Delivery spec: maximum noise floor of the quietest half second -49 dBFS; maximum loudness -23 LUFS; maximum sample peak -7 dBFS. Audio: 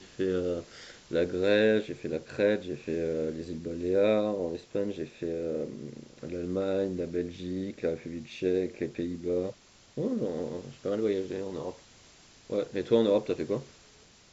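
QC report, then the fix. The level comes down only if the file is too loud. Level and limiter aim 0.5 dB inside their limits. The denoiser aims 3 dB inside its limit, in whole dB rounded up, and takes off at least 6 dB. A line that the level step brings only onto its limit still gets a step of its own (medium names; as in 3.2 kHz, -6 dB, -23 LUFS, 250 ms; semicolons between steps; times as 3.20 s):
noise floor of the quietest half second -57 dBFS: pass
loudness -31.0 LUFS: pass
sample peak -11.0 dBFS: pass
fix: none needed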